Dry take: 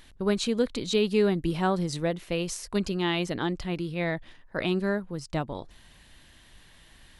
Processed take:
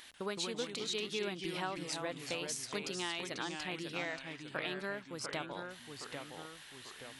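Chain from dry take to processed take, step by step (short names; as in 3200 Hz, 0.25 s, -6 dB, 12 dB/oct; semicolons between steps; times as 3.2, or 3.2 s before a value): HPF 1100 Hz 6 dB/oct; compressor 3:1, threshold -43 dBFS, peak gain reduction 13 dB; echoes that change speed 0.141 s, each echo -2 st, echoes 3, each echo -6 dB; gain +4 dB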